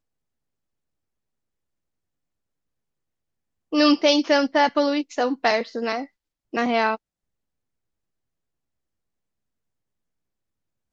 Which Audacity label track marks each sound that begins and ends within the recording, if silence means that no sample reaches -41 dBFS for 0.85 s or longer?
3.720000	6.960000	sound